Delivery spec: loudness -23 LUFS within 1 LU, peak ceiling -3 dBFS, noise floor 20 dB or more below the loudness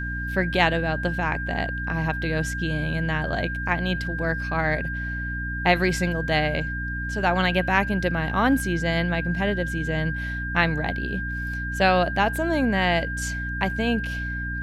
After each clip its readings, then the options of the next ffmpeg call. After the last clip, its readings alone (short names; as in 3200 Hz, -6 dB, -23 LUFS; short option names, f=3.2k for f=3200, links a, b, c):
hum 60 Hz; harmonics up to 300 Hz; hum level -29 dBFS; steady tone 1600 Hz; tone level -30 dBFS; loudness -24.5 LUFS; peak -5.0 dBFS; loudness target -23.0 LUFS
-> -af "bandreject=f=60:t=h:w=6,bandreject=f=120:t=h:w=6,bandreject=f=180:t=h:w=6,bandreject=f=240:t=h:w=6,bandreject=f=300:t=h:w=6"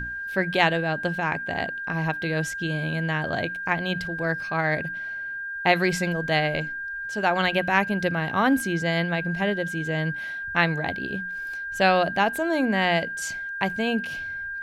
hum none; steady tone 1600 Hz; tone level -30 dBFS
-> -af "bandreject=f=1.6k:w=30"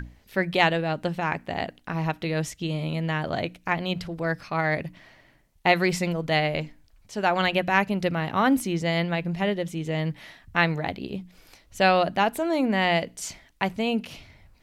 steady tone none; loudness -25.5 LUFS; peak -4.5 dBFS; loudness target -23.0 LUFS
-> -af "volume=2.5dB,alimiter=limit=-3dB:level=0:latency=1"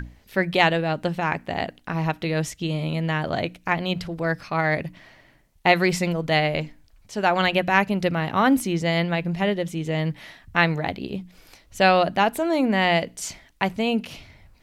loudness -23.0 LUFS; peak -3.0 dBFS; noise floor -57 dBFS